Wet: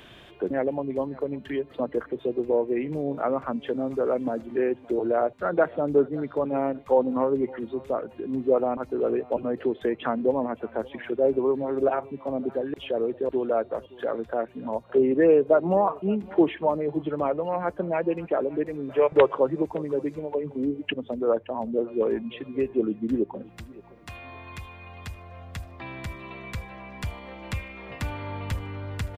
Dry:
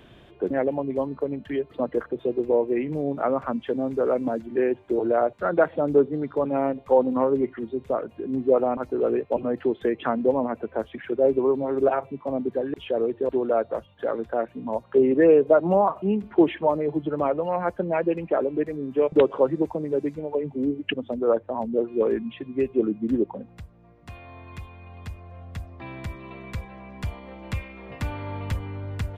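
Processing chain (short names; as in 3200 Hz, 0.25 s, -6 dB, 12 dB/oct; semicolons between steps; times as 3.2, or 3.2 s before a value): 18.89–19.35 ten-band EQ 125 Hz +4 dB, 250 Hz -10 dB, 500 Hz +4 dB, 1000 Hz +7 dB, 2000 Hz +8 dB; on a send: feedback echo 0.568 s, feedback 29%, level -22.5 dB; on the sum: mismatched tape noise reduction encoder only; gain -2 dB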